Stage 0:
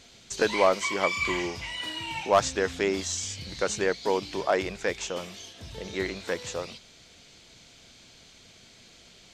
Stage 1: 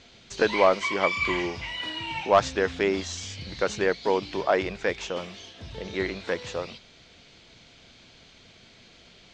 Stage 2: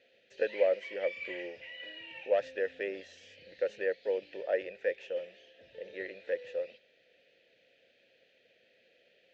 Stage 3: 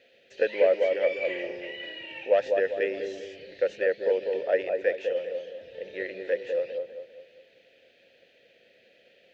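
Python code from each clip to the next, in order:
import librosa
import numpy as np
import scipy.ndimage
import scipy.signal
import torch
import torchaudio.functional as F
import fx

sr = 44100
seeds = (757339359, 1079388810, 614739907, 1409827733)

y1 = scipy.signal.sosfilt(scipy.signal.butter(2, 4300.0, 'lowpass', fs=sr, output='sos'), x)
y1 = y1 * 10.0 ** (2.0 / 20.0)
y2 = fx.vowel_filter(y1, sr, vowel='e')
y3 = fx.echo_wet_lowpass(y2, sr, ms=200, feedback_pct=41, hz=1100.0, wet_db=-4.0)
y3 = y3 * 10.0 ** (6.0 / 20.0)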